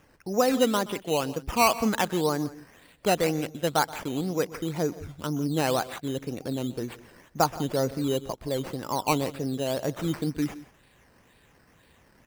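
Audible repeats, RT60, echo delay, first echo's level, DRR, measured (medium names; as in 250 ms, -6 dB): 2, no reverb, 126 ms, -19.5 dB, no reverb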